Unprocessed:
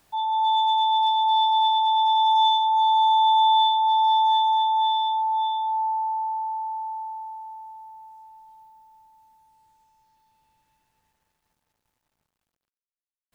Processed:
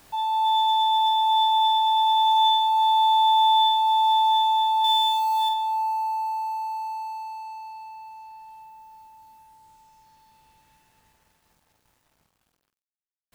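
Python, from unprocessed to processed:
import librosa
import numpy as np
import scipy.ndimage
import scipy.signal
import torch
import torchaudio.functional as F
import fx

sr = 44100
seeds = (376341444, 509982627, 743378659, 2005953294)

y = fx.law_mismatch(x, sr, coded='mu')
y = fx.high_shelf(y, sr, hz=2800.0, db=11.0, at=(4.84, 5.49))
y = fx.room_early_taps(y, sr, ms=(20, 48), db=(-10.5, -6.0))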